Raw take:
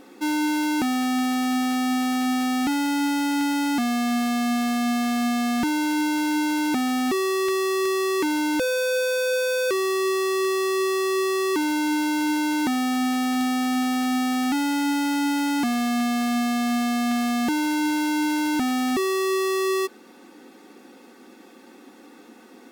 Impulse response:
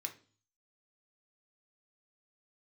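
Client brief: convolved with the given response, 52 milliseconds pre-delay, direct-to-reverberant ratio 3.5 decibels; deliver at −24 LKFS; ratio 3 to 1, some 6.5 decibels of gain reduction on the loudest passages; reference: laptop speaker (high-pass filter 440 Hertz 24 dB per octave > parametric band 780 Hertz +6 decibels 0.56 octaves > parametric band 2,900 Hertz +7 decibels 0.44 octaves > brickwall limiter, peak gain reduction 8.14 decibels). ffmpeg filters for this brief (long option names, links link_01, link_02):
-filter_complex "[0:a]acompressor=threshold=-32dB:ratio=3,asplit=2[link_01][link_02];[1:a]atrim=start_sample=2205,adelay=52[link_03];[link_02][link_03]afir=irnorm=-1:irlink=0,volume=-2dB[link_04];[link_01][link_04]amix=inputs=2:normalize=0,highpass=frequency=440:width=0.5412,highpass=frequency=440:width=1.3066,equalizer=frequency=780:width_type=o:width=0.56:gain=6,equalizer=frequency=2900:width_type=o:width=0.44:gain=7,volume=9.5dB,alimiter=limit=-17dB:level=0:latency=1"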